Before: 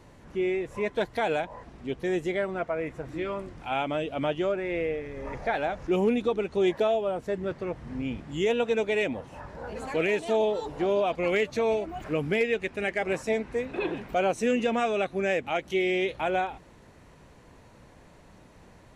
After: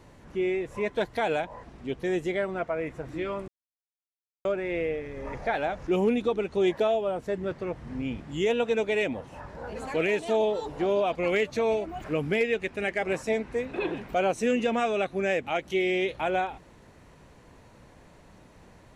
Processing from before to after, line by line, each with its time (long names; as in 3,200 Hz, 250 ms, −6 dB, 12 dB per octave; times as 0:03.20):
0:03.48–0:04.45: silence